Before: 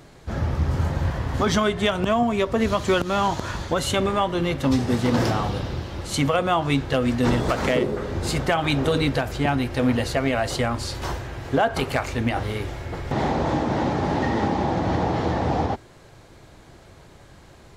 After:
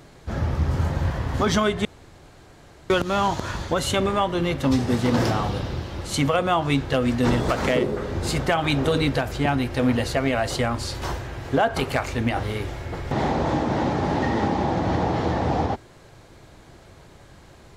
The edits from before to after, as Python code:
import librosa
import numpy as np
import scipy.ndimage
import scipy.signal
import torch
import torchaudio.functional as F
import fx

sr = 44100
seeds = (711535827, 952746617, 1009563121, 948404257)

y = fx.edit(x, sr, fx.room_tone_fill(start_s=1.85, length_s=1.05), tone=tone)